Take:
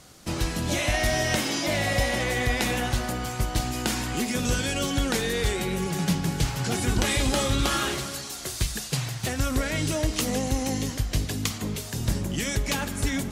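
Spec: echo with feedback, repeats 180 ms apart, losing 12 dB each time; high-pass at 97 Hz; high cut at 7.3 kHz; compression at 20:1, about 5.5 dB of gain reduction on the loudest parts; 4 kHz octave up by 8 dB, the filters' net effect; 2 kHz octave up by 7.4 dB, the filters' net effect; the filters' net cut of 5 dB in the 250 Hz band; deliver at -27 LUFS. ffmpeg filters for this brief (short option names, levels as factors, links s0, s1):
-af "highpass=97,lowpass=7300,equalizer=f=250:t=o:g=-6.5,equalizer=f=2000:t=o:g=6.5,equalizer=f=4000:t=o:g=8.5,acompressor=threshold=0.0631:ratio=20,aecho=1:1:180|360|540:0.251|0.0628|0.0157"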